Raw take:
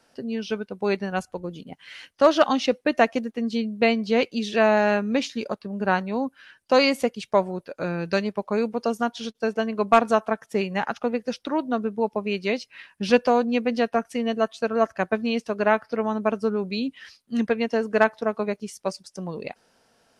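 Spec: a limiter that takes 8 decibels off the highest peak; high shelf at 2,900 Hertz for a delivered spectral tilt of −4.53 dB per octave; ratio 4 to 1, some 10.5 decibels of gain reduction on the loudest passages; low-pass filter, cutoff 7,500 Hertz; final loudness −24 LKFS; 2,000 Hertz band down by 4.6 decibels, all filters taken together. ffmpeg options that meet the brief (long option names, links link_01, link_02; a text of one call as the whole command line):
ffmpeg -i in.wav -af "lowpass=7500,equalizer=frequency=2000:width_type=o:gain=-7.5,highshelf=frequency=2900:gain=3,acompressor=threshold=-25dB:ratio=4,volume=8dB,alimiter=limit=-12.5dB:level=0:latency=1" out.wav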